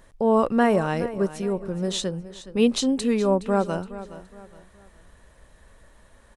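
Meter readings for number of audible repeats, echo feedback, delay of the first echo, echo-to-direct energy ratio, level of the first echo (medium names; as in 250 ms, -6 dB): 3, 35%, 418 ms, -14.5 dB, -15.0 dB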